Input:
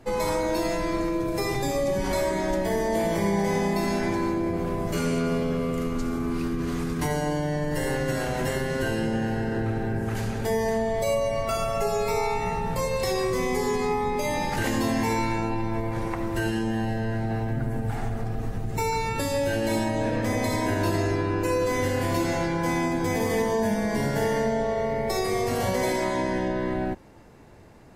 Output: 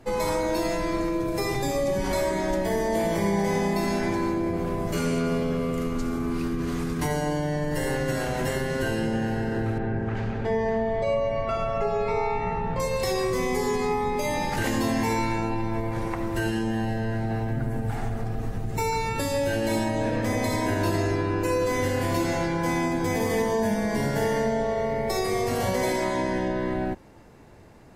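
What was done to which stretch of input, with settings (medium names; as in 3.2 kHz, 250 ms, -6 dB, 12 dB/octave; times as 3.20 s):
9.78–12.80 s: low-pass 2.7 kHz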